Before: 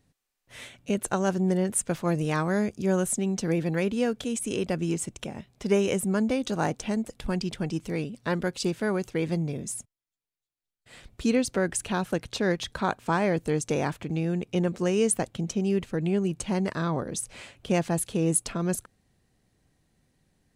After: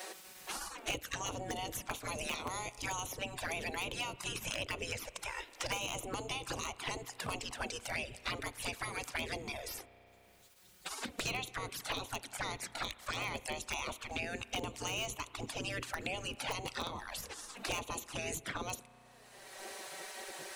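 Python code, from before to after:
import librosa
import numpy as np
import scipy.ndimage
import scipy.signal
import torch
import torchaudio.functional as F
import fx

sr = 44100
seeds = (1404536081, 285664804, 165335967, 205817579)

p1 = fx.low_shelf(x, sr, hz=170.0, db=7.5)
p2 = fx.spec_gate(p1, sr, threshold_db=-20, keep='weak')
p3 = fx.dynamic_eq(p2, sr, hz=1100.0, q=2.0, threshold_db=-53.0, ratio=4.0, max_db=3)
p4 = fx.env_flanger(p3, sr, rest_ms=5.5, full_db=-37.0)
p5 = (np.mod(10.0 ** (30.0 / 20.0) * p4 + 1.0, 2.0) - 1.0) / 10.0 ** (30.0 / 20.0)
p6 = p4 + (p5 * librosa.db_to_amplitude(-6.0))
p7 = fx.rev_spring(p6, sr, rt60_s=1.3, pass_ms=(33,), chirp_ms=45, drr_db=18.5)
p8 = fx.band_squash(p7, sr, depth_pct=100)
y = p8 * librosa.db_to_amplitude(1.0)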